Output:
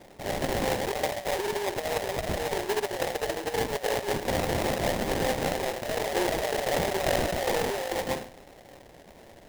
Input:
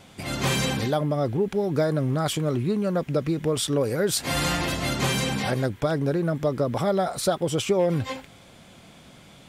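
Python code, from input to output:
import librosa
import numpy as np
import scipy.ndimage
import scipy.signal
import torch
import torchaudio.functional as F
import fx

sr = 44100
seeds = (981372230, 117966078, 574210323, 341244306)

y = scipy.signal.sosfilt(scipy.signal.butter(16, 360.0, 'highpass', fs=sr, output='sos'), x)
y = fx.peak_eq(y, sr, hz=7600.0, db=-4.0, octaves=0.82)
y = fx.echo_feedback(y, sr, ms=103, feedback_pct=27, wet_db=-11.5)
y = fx.rev_fdn(y, sr, rt60_s=0.34, lf_ratio=1.2, hf_ratio=0.3, size_ms=31.0, drr_db=0.5)
y = fx.over_compress(y, sr, threshold_db=-25.0, ratio=-0.5)
y = fx.high_shelf(y, sr, hz=4200.0, db=-7.0)
y = fx.sample_hold(y, sr, seeds[0], rate_hz=1300.0, jitter_pct=20)
y = fx.sustainer(y, sr, db_per_s=23.0, at=(5.84, 7.91), fade=0.02)
y = y * librosa.db_to_amplitude(-2.5)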